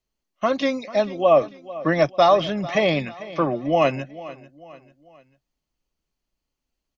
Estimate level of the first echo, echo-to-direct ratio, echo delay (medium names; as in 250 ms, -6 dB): -17.5 dB, -16.5 dB, 444 ms